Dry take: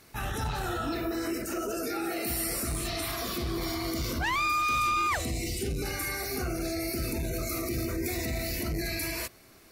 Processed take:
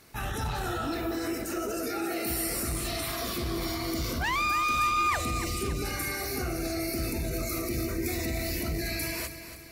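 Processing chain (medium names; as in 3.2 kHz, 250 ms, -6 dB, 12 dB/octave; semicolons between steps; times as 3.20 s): bit-crushed delay 283 ms, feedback 55%, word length 10-bit, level -11 dB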